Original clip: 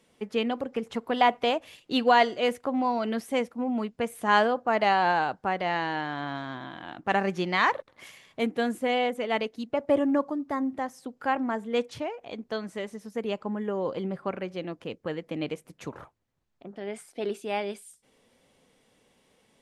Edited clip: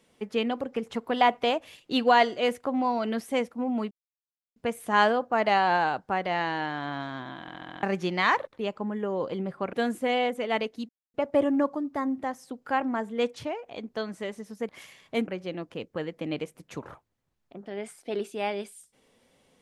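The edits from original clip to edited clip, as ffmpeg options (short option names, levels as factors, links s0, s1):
-filter_complex "[0:a]asplit=13[s0][s1][s2][s3][s4][s5][s6][s7][s8][s9][s10][s11][s12];[s0]atrim=end=3.91,asetpts=PTS-STARTPTS,afade=t=out:st=3.906:d=0.004:c=hsin,apad=pad_dur=0.65[s13];[s1]atrim=start=3.91:end=6.832,asetpts=PTS-STARTPTS,afade=t=in:d=0.004:c=hsin[s14];[s2]atrim=start=6.758:end=6.832[s15];[s3]atrim=start=6.758:end=6.832[s16];[s4]atrim=start=6.758:end=6.832[s17];[s5]atrim=start=6.758:end=6.832[s18];[s6]atrim=start=6.758:end=6.832[s19];[s7]atrim=start=7.178:end=7.942[s20];[s8]atrim=start=13.238:end=14.382[s21];[s9]atrim=start=8.528:end=9.69,asetpts=PTS-STARTPTS,afade=t=out:st=1.158:d=0.004:c=hsin,apad=pad_dur=0.25[s22];[s10]atrim=start=9.69:end=13.242,asetpts=PTS-STARTPTS,afade=t=in:d=0.004:c=hsin[s23];[s11]atrim=start=7.938:end=8.532[s24];[s12]atrim=start=14.378[s25];[s13][s14]concat=n=2:v=0:a=1[s26];[s26][s15]acrossfade=d=0.004:c1=hsin:c2=hsin[s27];[s27][s16]acrossfade=d=0.004:c1=hsin:c2=hsin[s28];[s28][s17]acrossfade=d=0.004:c1=hsin:c2=hsin[s29];[s29][s18]acrossfade=d=0.004:c1=hsin:c2=hsin[s30];[s30][s19]acrossfade=d=0.004:c1=hsin:c2=hsin[s31];[s31][s20]acrossfade=d=0.004:c1=hsin:c2=hsin[s32];[s32][s21]acrossfade=d=0.004:c1=hsin:c2=hsin[s33];[s22][s23]concat=n=2:v=0:a=1[s34];[s33][s34]acrossfade=d=0.004:c1=hsin:c2=hsin[s35];[s35][s24]acrossfade=d=0.004:c1=hsin:c2=hsin[s36];[s36][s25]acrossfade=d=0.004:c1=hsin:c2=hsin"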